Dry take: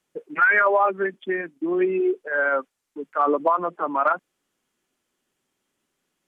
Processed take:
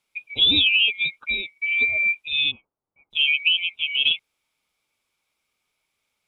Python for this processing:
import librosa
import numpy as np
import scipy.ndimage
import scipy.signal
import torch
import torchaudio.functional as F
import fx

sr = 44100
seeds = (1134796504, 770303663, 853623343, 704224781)

y = fx.band_swap(x, sr, width_hz=2000)
y = fx.lowpass(y, sr, hz=1100.0, slope=24, at=(2.5, 3.1), fade=0.02)